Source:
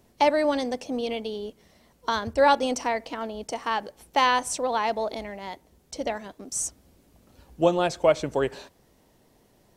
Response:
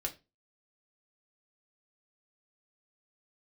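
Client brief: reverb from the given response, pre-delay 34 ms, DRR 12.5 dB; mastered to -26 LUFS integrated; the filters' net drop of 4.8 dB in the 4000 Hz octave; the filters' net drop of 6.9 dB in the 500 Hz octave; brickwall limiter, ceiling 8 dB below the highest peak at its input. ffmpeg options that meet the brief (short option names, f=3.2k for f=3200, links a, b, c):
-filter_complex "[0:a]equalizer=f=500:t=o:g=-8.5,equalizer=f=4k:t=o:g=-6.5,alimiter=limit=-19dB:level=0:latency=1,asplit=2[a][b];[1:a]atrim=start_sample=2205,adelay=34[c];[b][c]afir=irnorm=-1:irlink=0,volume=-14dB[d];[a][d]amix=inputs=2:normalize=0,volume=6dB"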